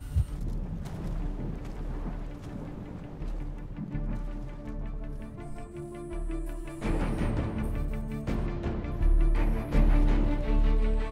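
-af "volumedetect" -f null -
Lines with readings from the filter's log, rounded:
mean_volume: -28.6 dB
max_volume: -12.9 dB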